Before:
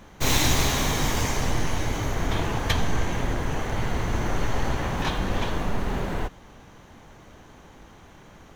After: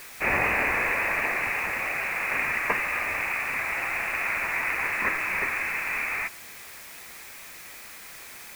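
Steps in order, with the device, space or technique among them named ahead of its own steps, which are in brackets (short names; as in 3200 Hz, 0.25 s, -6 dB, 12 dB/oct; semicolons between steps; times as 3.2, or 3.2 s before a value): scrambled radio voice (BPF 330–3000 Hz; inverted band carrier 2800 Hz; white noise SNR 16 dB); gain +4 dB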